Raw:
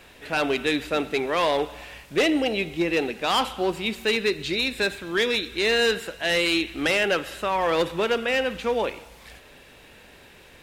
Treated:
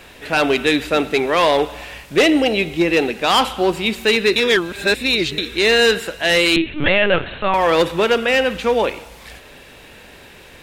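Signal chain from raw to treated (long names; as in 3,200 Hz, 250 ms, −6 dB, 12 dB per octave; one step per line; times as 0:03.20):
0:04.36–0:05.38: reverse
0:06.56–0:07.54: linear-prediction vocoder at 8 kHz pitch kept
level +7.5 dB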